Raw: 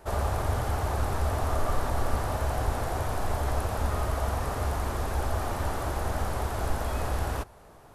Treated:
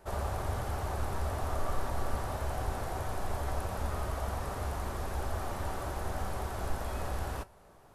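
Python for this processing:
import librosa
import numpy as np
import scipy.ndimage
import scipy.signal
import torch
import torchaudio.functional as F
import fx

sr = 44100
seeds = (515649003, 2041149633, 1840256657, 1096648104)

y = fx.comb_fb(x, sr, f0_hz=190.0, decay_s=0.17, harmonics='all', damping=0.0, mix_pct=50)
y = y * 10.0 ** (-1.5 / 20.0)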